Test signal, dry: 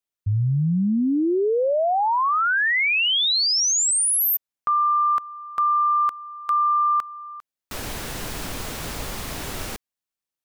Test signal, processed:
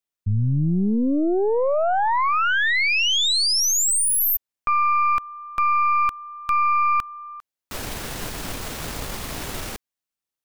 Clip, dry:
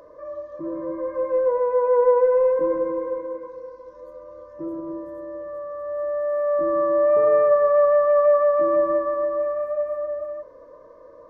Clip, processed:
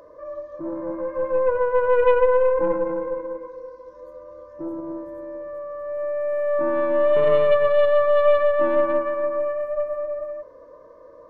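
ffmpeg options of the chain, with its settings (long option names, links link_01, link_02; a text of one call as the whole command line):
ffmpeg -i in.wav -af "aeval=exprs='0.398*(cos(1*acos(clip(val(0)/0.398,-1,1)))-cos(1*PI/2))+0.0708*(cos(4*acos(clip(val(0)/0.398,-1,1)))-cos(4*PI/2))':channel_layout=same" out.wav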